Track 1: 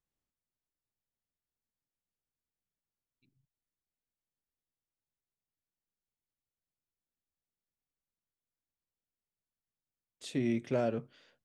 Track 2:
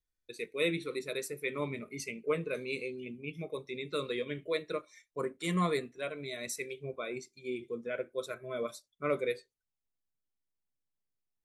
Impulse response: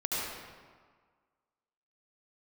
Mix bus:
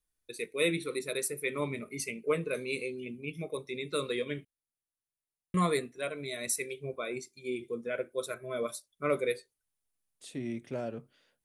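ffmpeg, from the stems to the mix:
-filter_complex "[0:a]volume=-5.5dB[a];[1:a]volume=2dB,asplit=3[b][c][d];[b]atrim=end=4.45,asetpts=PTS-STARTPTS,afade=t=out:st=4.446:d=0.004:c=hsin[e];[c]atrim=start=4.45:end=5.54,asetpts=PTS-STARTPTS,volume=0[f];[d]atrim=start=5.54,asetpts=PTS-STARTPTS,afade=t=in:d=0.004:c=hsin[g];[e][f][g]concat=n=3:v=0:a=1[h];[a][h]amix=inputs=2:normalize=0,equalizer=f=9.9k:w=2.4:g=12"

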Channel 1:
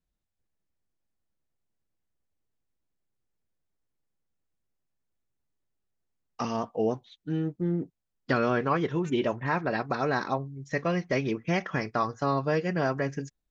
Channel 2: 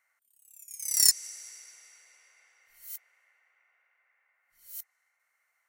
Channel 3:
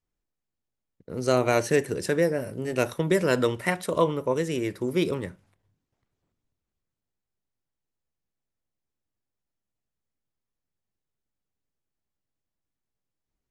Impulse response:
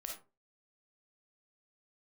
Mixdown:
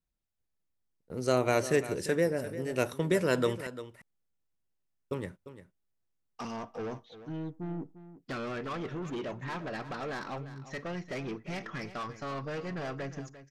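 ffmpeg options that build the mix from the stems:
-filter_complex "[0:a]asoftclip=type=tanh:threshold=-29.5dB,volume=-4.5dB,asplit=3[a][b][c];[b]volume=-15.5dB[d];[c]volume=-13dB[e];[2:a]agate=range=-22dB:threshold=-40dB:ratio=16:detection=peak,volume=-4.5dB,asplit=3[f][g][h];[f]atrim=end=3.67,asetpts=PTS-STARTPTS,afade=t=out:st=3.666:d=0.004:c=hsin[i];[g]atrim=start=3.67:end=5.11,asetpts=PTS-STARTPTS,volume=0[j];[h]atrim=start=5.11,asetpts=PTS-STARTPTS,afade=t=in:d=0.004:c=hsin[k];[i][j][k]concat=n=3:v=0:a=1,asplit=2[l][m];[m]volume=-13.5dB[n];[3:a]atrim=start_sample=2205[o];[d][o]afir=irnorm=-1:irlink=0[p];[e][n]amix=inputs=2:normalize=0,aecho=0:1:348:1[q];[a][l][p][q]amix=inputs=4:normalize=0"

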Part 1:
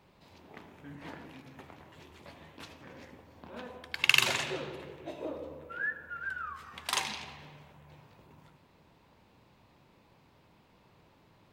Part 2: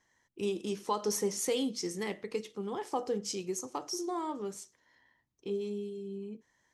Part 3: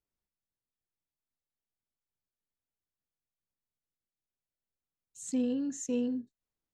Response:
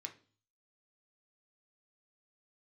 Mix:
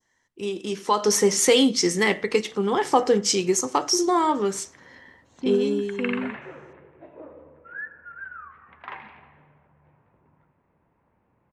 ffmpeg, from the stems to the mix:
-filter_complex "[0:a]lowpass=f=2k:w=0.5412,lowpass=f=2k:w=1.3066,adelay=1950,volume=-5dB[a];[1:a]bandreject=f=2.5k:w=20,dynaudnorm=f=150:g=13:m=11.5dB,volume=1dB,asplit=2[b][c];[c]volume=-7.5dB[d];[2:a]lowpass=f=3.6k:w=0.5412,lowpass=f=3.6k:w=1.3066,adelay=100,volume=2.5dB[e];[3:a]atrim=start_sample=2205[f];[d][f]afir=irnorm=-1:irlink=0[g];[a][b][e][g]amix=inputs=4:normalize=0,lowpass=10k,adynamicequalizer=threshold=0.00251:dfrequency=1900:dqfactor=0.73:tfrequency=1900:tqfactor=0.73:attack=5:release=100:ratio=0.375:range=2.5:mode=boostabove:tftype=bell"

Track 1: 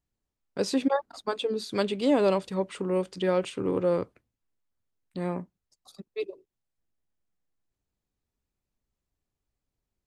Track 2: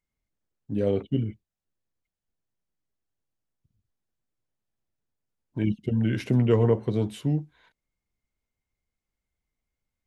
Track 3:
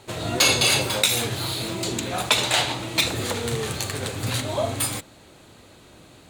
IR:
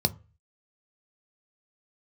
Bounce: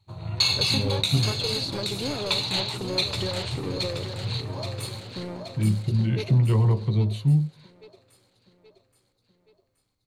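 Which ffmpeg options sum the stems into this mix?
-filter_complex "[0:a]acompressor=threshold=-29dB:ratio=6,aeval=exprs='clip(val(0),-1,0.0316)':c=same,volume=1dB,asplit=2[a][b];[b]volume=-9dB[c];[1:a]highpass=99,volume=-2.5dB,asplit=2[d][e];[e]volume=-11.5dB[f];[2:a]afwtdn=0.02,volume=-12dB,asplit=3[g][h][i];[h]volume=-11.5dB[j];[i]volume=-4.5dB[k];[3:a]atrim=start_sample=2205[l];[f][j]amix=inputs=2:normalize=0[m];[m][l]afir=irnorm=-1:irlink=0[n];[c][k]amix=inputs=2:normalize=0,aecho=0:1:825|1650|2475|3300|4125|4950|5775:1|0.48|0.23|0.111|0.0531|0.0255|0.0122[o];[a][d][g][n][o]amix=inputs=5:normalize=0,equalizer=f=4.3k:w=6.3:g=11.5"

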